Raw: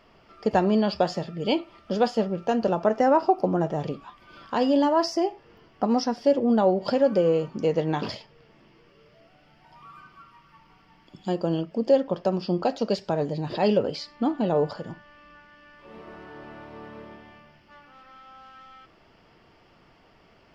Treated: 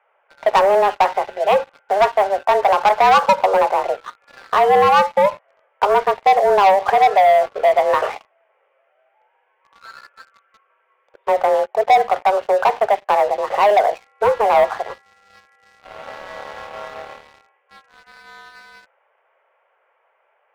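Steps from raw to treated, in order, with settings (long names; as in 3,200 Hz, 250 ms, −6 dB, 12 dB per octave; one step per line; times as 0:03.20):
single-sideband voice off tune +200 Hz 290–2,300 Hz
leveller curve on the samples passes 3
level +2 dB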